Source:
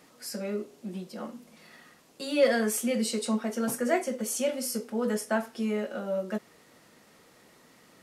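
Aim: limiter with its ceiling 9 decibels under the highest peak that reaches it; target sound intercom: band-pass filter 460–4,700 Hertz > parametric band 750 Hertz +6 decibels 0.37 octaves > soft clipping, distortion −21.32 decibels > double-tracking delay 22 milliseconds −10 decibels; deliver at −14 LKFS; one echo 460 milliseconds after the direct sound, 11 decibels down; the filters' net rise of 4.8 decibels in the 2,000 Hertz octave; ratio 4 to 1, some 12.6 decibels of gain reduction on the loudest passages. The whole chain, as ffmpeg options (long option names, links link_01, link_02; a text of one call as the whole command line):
ffmpeg -i in.wav -filter_complex "[0:a]equalizer=frequency=2000:width_type=o:gain=6,acompressor=threshold=-32dB:ratio=4,alimiter=level_in=5dB:limit=-24dB:level=0:latency=1,volume=-5dB,highpass=460,lowpass=4700,equalizer=frequency=750:width_type=o:width=0.37:gain=6,aecho=1:1:460:0.282,asoftclip=threshold=-30.5dB,asplit=2[link_01][link_02];[link_02]adelay=22,volume=-10dB[link_03];[link_01][link_03]amix=inputs=2:normalize=0,volume=28dB" out.wav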